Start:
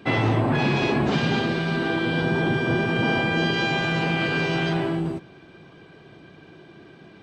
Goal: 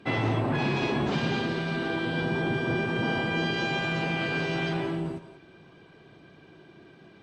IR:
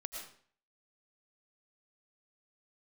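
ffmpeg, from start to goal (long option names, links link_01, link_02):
-filter_complex "[1:a]atrim=start_sample=2205,afade=type=out:start_time=0.14:duration=0.01,atrim=end_sample=6615,asetrate=22491,aresample=44100[link_01];[0:a][link_01]afir=irnorm=-1:irlink=0,volume=-5dB"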